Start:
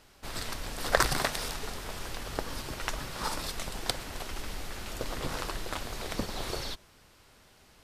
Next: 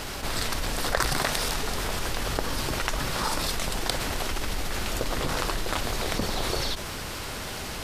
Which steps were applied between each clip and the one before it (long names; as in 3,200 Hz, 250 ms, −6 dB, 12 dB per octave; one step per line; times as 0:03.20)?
envelope flattener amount 70%
level −2.5 dB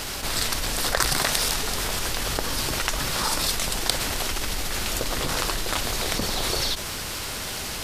high-shelf EQ 2,700 Hz +7.5 dB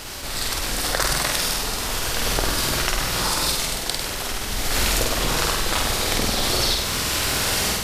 automatic gain control gain up to 12 dB
flutter between parallel walls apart 8.4 metres, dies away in 0.84 s
level −4 dB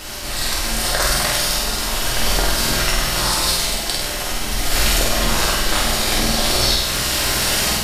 convolution reverb, pre-delay 3 ms, DRR −1 dB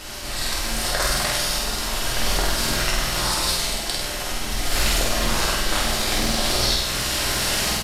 downsampling to 32,000 Hz
highs frequency-modulated by the lows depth 0.17 ms
level −3.5 dB